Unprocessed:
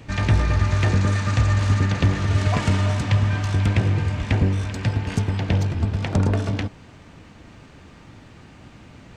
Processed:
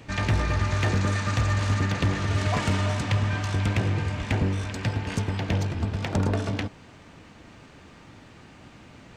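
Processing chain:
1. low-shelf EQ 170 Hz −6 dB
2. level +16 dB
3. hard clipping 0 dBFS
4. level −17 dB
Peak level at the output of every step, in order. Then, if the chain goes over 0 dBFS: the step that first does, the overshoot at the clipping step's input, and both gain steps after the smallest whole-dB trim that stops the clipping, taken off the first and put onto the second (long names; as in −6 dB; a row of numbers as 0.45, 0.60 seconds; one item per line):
−9.5, +6.5, 0.0, −17.0 dBFS
step 2, 6.5 dB
step 2 +9 dB, step 4 −10 dB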